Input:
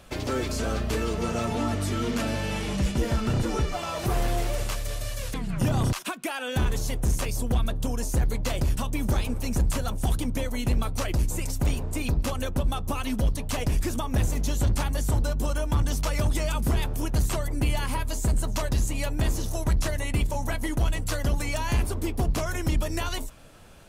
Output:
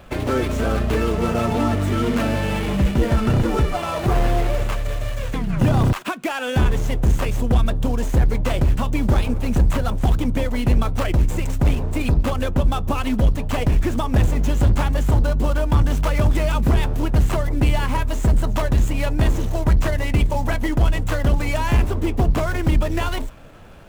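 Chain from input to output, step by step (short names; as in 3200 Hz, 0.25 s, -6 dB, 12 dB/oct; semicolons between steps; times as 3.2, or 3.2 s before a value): median filter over 9 samples; gain +7.5 dB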